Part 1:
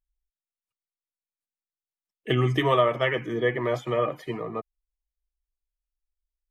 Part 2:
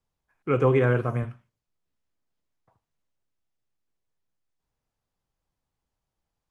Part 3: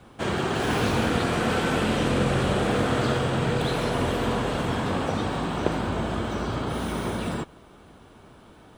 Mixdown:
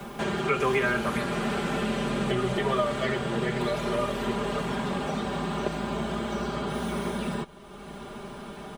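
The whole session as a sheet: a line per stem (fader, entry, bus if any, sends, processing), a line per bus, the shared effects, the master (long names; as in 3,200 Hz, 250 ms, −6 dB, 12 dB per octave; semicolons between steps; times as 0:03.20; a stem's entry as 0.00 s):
−7.5 dB, 0.00 s, no send, no processing
+1.0 dB, 0.00 s, no send, spectral tilt +4.5 dB per octave
−8.5 dB, 0.00 s, no send, no processing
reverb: not used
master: comb filter 5 ms, depth 94%; multiband upward and downward compressor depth 70%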